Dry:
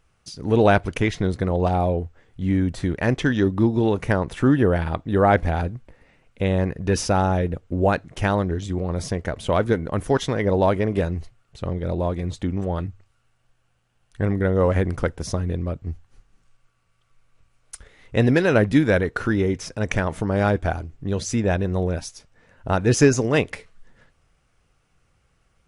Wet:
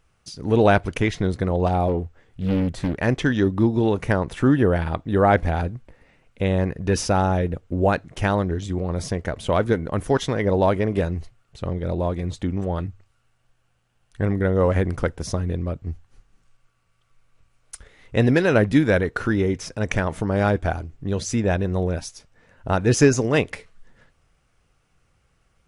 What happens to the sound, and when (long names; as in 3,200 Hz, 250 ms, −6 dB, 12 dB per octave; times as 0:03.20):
0:01.88–0:02.96: highs frequency-modulated by the lows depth 0.82 ms